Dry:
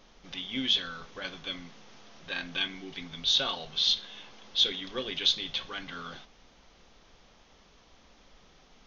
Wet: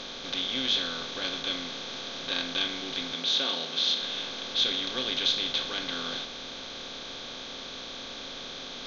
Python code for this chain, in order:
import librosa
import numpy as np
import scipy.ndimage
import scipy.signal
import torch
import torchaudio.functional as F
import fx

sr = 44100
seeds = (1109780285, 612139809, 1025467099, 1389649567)

y = fx.bin_compress(x, sr, power=0.4)
y = fx.ellip_highpass(y, sr, hz=160.0, order=4, stop_db=40, at=(3.13, 4.01))
y = y * librosa.db_to_amplitude(-4.5)